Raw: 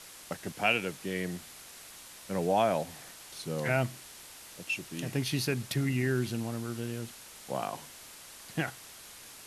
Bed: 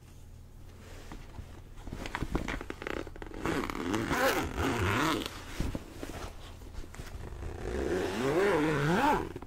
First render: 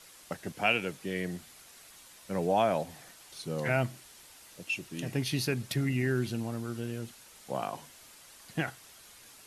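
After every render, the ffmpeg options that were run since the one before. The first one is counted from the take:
-af "afftdn=nr=6:nf=-50"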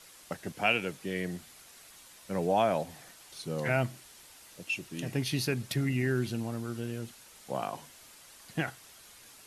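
-af anull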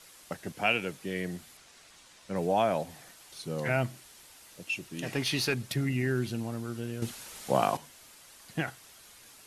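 -filter_complex "[0:a]asettb=1/sr,asplit=3[a][b][c];[a]atrim=end=1.574[d];[b]atrim=start=1.57:end=2.36,asetpts=PTS-STARTPTS,afade=t=in:d=0.004:c=qsin,afade=t=out:st=0.786:d=0.004:c=qsin,lowpass=7.5k[e];[c]atrim=start=2.356[f];[d][e]acrossfade=d=0.004:c1=hsin:c2=qsin[g];[g][f]acrossfade=d=0.004:c1=qsin:c2=hsin,asplit=3[h][i][j];[h]afade=t=out:st=5.02:d=0.02[k];[i]asplit=2[l][m];[m]highpass=f=720:p=1,volume=13dB,asoftclip=type=tanh:threshold=-16.5dB[n];[l][n]amix=inputs=2:normalize=0,lowpass=f=4.8k:p=1,volume=-6dB,afade=t=in:st=5.02:d=0.02,afade=t=out:st=5.53:d=0.02[o];[j]afade=t=in:st=5.53:d=0.02[p];[k][o][p]amix=inputs=3:normalize=0,asplit=3[q][r][s];[q]atrim=end=7.022[t];[r]atrim=start=7.018:end=7.772,asetpts=PTS-STARTPTS,volume=8.5dB[u];[s]atrim=start=7.768[v];[t][u]acrossfade=d=0.004:c1=hsin:c2=hsin[w];[w][v]acrossfade=d=0.004:c1=hsin:c2=hsin"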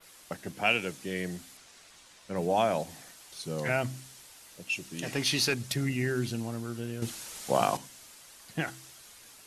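-af "adynamicequalizer=threshold=0.00355:dfrequency=6800:dqfactor=0.74:tfrequency=6800:tqfactor=0.74:attack=5:release=100:ratio=0.375:range=3:mode=boostabove:tftype=bell,bandreject=f=65.54:t=h:w=4,bandreject=f=131.08:t=h:w=4,bandreject=f=196.62:t=h:w=4,bandreject=f=262.16:t=h:w=4,bandreject=f=327.7:t=h:w=4"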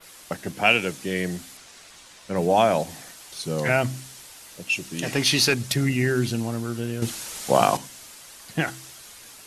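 -af "volume=7.5dB"

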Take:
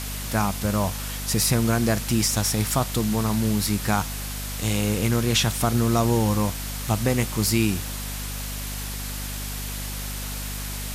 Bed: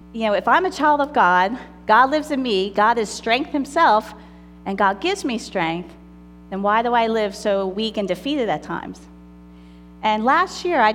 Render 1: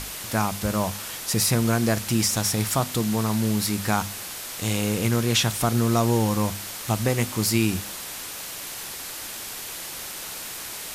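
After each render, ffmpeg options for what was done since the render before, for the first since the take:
-af "bandreject=f=50:t=h:w=6,bandreject=f=100:t=h:w=6,bandreject=f=150:t=h:w=6,bandreject=f=200:t=h:w=6,bandreject=f=250:t=h:w=6"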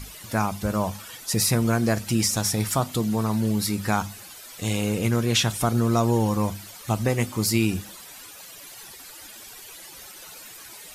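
-af "afftdn=nr=13:nf=-36"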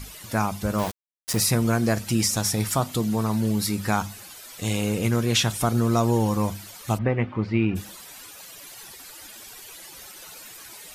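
-filter_complex "[0:a]asettb=1/sr,asplit=3[a][b][c];[a]atrim=end=0.784[d];[b]atrim=start=0.78:end=1.4,asetpts=PTS-STARTPTS,afade=t=in:d=0.004:c=qsin,afade=t=out:st=0.616:d=0.004:c=qsin,aeval=exprs='val(0)*gte(abs(val(0)),0.0447)':c=same[e];[c]atrim=start=1.396[f];[d][e]acrossfade=d=0.004:c1=hsin:c2=qsin[g];[g][f]acrossfade=d=0.004:c1=qsin:c2=hsin,asplit=3[h][i][j];[h]afade=t=out:st=6.97:d=0.02[k];[i]lowpass=f=2.5k:w=0.5412,lowpass=f=2.5k:w=1.3066,afade=t=in:st=6.97:d=0.02,afade=t=out:st=7.75:d=0.02[l];[j]afade=t=in:st=7.75:d=0.02[m];[k][l][m]amix=inputs=3:normalize=0"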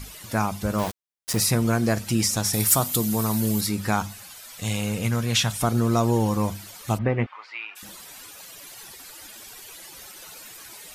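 -filter_complex "[0:a]asettb=1/sr,asplit=3[a][b][c];[a]atrim=end=2.534[d];[b]atrim=start=2.53:end=3.61,asetpts=PTS-STARTPTS,afade=t=in:d=0.004:c=qsin,afade=t=out:st=1.076:d=0.004:c=qsin,aemphasis=mode=production:type=50fm[e];[c]atrim=start=3.606[f];[d][e]acrossfade=d=0.004:c1=hsin:c2=qsin[g];[g][f]acrossfade=d=0.004:c1=qsin:c2=hsin,asettb=1/sr,asplit=3[h][i][j];[h]atrim=end=4.134[k];[i]atrim=start=4.13:end=5.62,asetpts=PTS-STARTPTS,afade=t=in:d=0.004:c=qsin,afade=t=out:st=1.486:d=0.004:c=qsin,equalizer=f=360:t=o:w=0.79:g=-9[l];[j]atrim=start=5.616[m];[k][l]acrossfade=d=0.004:c1=hsin:c2=qsin[n];[n][m]acrossfade=d=0.004:c1=qsin:c2=hsin,asettb=1/sr,asplit=3[o][p][q];[o]atrim=end=7.264[r];[p]atrim=start=7.26:end=7.83,asetpts=PTS-STARTPTS,afade=t=in:d=0.004:c=qsin,afade=t=out:st=0.566:d=0.004:c=qsin,highpass=f=910:w=0.5412,highpass=f=910:w=1.3066[s];[q]atrim=start=7.826[t];[r][s]acrossfade=d=0.004:c1=hsin:c2=qsin[u];[u][t]acrossfade=d=0.004:c1=qsin:c2=hsin"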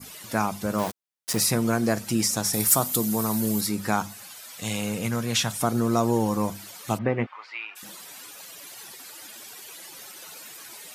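-af "highpass=150,adynamicequalizer=threshold=0.00794:dfrequency=3000:dqfactor=0.99:tfrequency=3000:tqfactor=0.99:attack=5:release=100:ratio=0.375:range=2:mode=cutabove:tftype=bell"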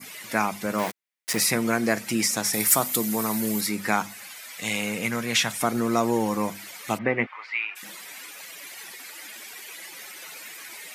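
-af "highpass=170,equalizer=f=2.1k:w=2.1:g=10"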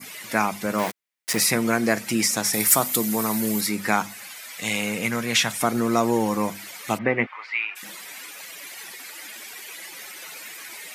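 -af "volume=2dB"

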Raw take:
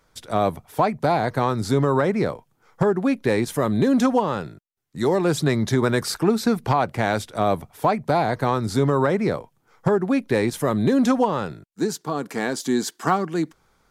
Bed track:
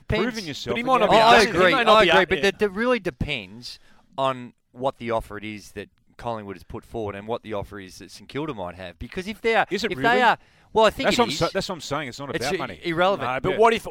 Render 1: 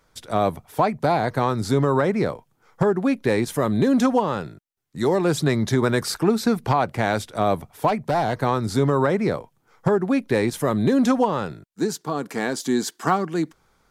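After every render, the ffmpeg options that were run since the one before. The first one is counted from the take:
-filter_complex "[0:a]asplit=3[a][b][c];[a]afade=t=out:st=7.87:d=0.02[d];[b]asoftclip=type=hard:threshold=-15.5dB,afade=t=in:st=7.87:d=0.02,afade=t=out:st=8.39:d=0.02[e];[c]afade=t=in:st=8.39:d=0.02[f];[d][e][f]amix=inputs=3:normalize=0"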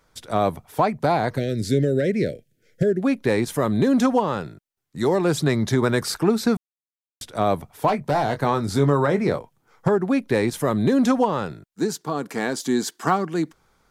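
-filter_complex "[0:a]asplit=3[a][b][c];[a]afade=t=out:st=1.36:d=0.02[d];[b]asuperstop=centerf=1000:order=8:qfactor=0.94,afade=t=in:st=1.36:d=0.02,afade=t=out:st=3.01:d=0.02[e];[c]afade=t=in:st=3.01:d=0.02[f];[d][e][f]amix=inputs=3:normalize=0,asettb=1/sr,asplit=3[g][h][i];[g]atrim=end=7.864[j];[h]atrim=start=7.86:end=9.38,asetpts=PTS-STARTPTS,afade=t=in:d=0.004:c=qsin,afade=t=out:st=1.516:d=0.004:c=qsin,asplit=2[k][l];[l]adelay=21,volume=-9.5dB[m];[k][m]amix=inputs=2:normalize=0,atrim=end_sample=67032[n];[i]atrim=start=9.376[o];[j][n]acrossfade=d=0.004:c1=hsin:c2=qsin[p];[p][o]acrossfade=d=0.004:c1=qsin:c2=hsin,asplit=3[q][r][s];[q]atrim=end=6.57,asetpts=PTS-STARTPTS,afade=t=out:st=6.566:d=0.004:c=hsin[t];[r]atrim=start=6.57:end=7.21,asetpts=PTS-STARTPTS,volume=0[u];[s]atrim=start=7.21,asetpts=PTS-STARTPTS,afade=t=in:d=0.004:c=hsin[v];[t][u][v]concat=n=3:v=0:a=1"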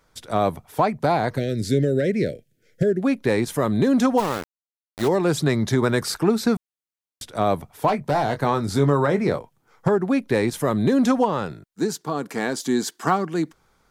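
-filter_complex "[0:a]asplit=3[a][b][c];[a]afade=t=out:st=4.17:d=0.02[d];[b]aeval=exprs='val(0)*gte(abs(val(0)),0.0531)':c=same,afade=t=in:st=4.17:d=0.02,afade=t=out:st=5.07:d=0.02[e];[c]afade=t=in:st=5.07:d=0.02[f];[d][e][f]amix=inputs=3:normalize=0"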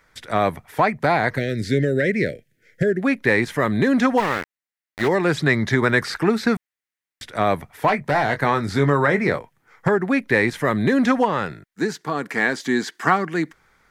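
-filter_complex "[0:a]acrossover=split=5500[a][b];[b]acompressor=threshold=-43dB:ratio=4:attack=1:release=60[c];[a][c]amix=inputs=2:normalize=0,equalizer=f=1.9k:t=o:w=0.82:g=12.5"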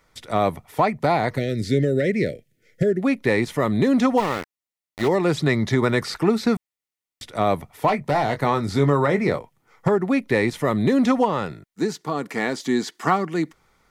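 -af "equalizer=f=1.8k:w=1.4:g=-5.5,bandreject=f=1.6k:w=8.2"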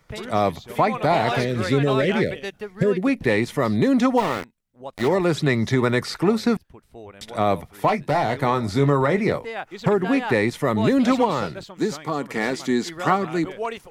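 -filter_complex "[1:a]volume=-11.5dB[a];[0:a][a]amix=inputs=2:normalize=0"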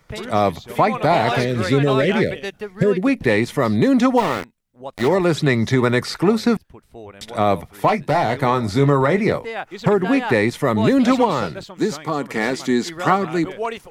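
-af "volume=3dB"

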